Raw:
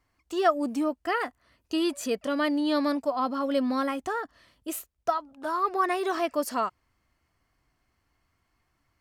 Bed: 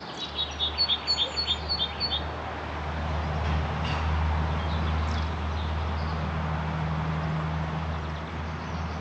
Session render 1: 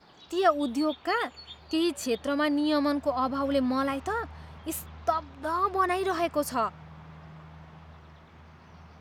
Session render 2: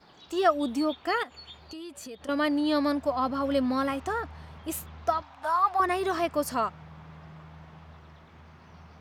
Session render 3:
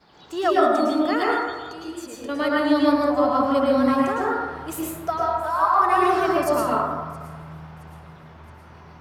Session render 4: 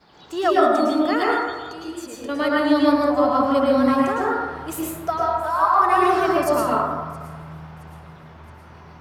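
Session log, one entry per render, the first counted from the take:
add bed -18.5 dB
1.23–2.29 s: compression 5:1, threshold -40 dBFS; 5.22–5.80 s: resonant low shelf 570 Hz -10 dB, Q 3
feedback echo behind a high-pass 670 ms, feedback 51%, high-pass 3.7 kHz, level -20 dB; plate-style reverb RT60 1.4 s, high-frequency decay 0.3×, pre-delay 95 ms, DRR -5.5 dB
trim +1.5 dB

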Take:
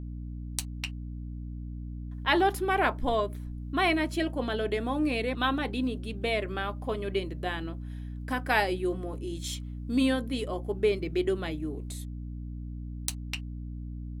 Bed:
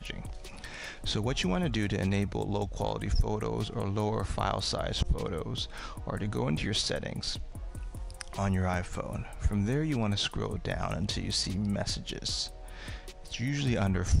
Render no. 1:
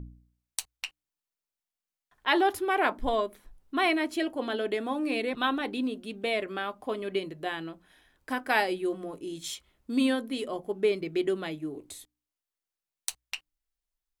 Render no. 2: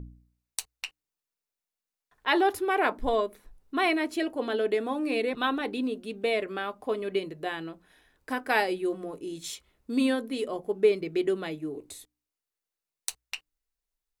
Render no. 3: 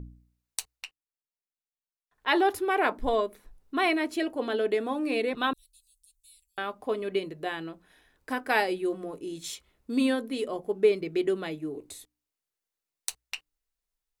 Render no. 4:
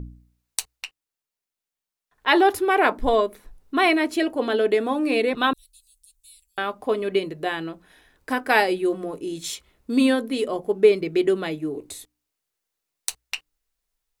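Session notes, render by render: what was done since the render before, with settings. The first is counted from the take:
de-hum 60 Hz, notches 5
peaking EQ 450 Hz +5.5 dB 0.26 oct; band-stop 3.2 kHz, Q 17
0.72–2.30 s: dip -12.5 dB, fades 0.22 s; 5.53–6.58 s: inverse Chebyshev band-stop 220–1400 Hz, stop band 80 dB
trim +6.5 dB; peak limiter -3 dBFS, peak gain reduction 1 dB

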